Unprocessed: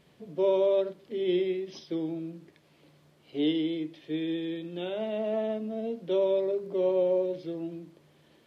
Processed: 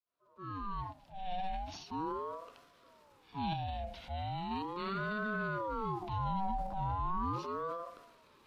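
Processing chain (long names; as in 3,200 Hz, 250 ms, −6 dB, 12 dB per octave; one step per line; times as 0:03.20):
fade in at the beginning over 2.67 s
brickwall limiter −25.5 dBFS, peak gain reduction 8 dB
transient designer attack −5 dB, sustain +7 dB
0:03.53–0:04.51: downward compressor 2 to 1, threshold −36 dBFS, peak gain reduction 4 dB
ring modulator whose carrier an LFO sweeps 610 Hz, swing 40%, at 0.38 Hz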